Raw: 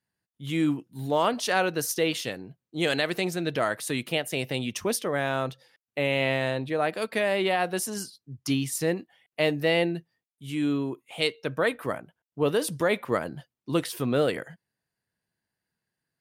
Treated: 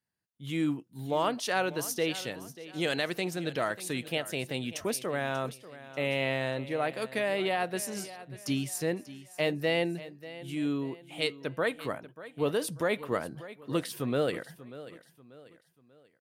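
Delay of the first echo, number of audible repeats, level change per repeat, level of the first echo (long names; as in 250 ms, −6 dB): 589 ms, 3, −8.0 dB, −16.0 dB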